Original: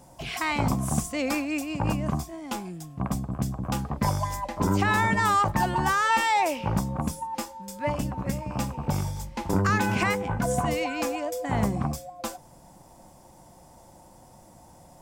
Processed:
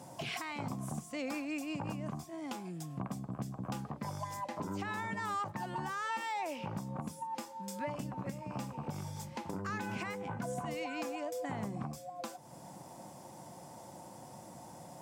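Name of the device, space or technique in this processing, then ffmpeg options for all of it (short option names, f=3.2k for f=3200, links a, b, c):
podcast mastering chain: -af "highpass=f=110:w=0.5412,highpass=f=110:w=1.3066,highshelf=f=12k:g=-5,deesser=0.7,acompressor=threshold=-42dB:ratio=2.5,alimiter=level_in=6dB:limit=-24dB:level=0:latency=1:release=406,volume=-6dB,volume=2.5dB" -ar 44100 -c:a libmp3lame -b:a 112k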